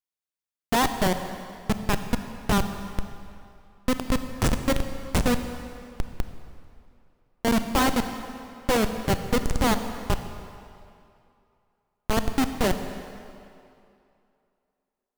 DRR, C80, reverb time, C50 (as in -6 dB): 8.0 dB, 9.5 dB, 2.6 s, 8.5 dB